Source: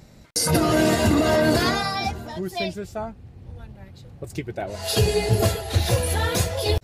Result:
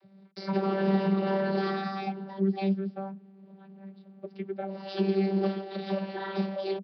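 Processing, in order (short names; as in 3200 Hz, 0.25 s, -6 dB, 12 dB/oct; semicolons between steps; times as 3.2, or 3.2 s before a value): sample leveller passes 1; vocoder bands 32, saw 194 Hz; downsampling 11025 Hz; gain -8 dB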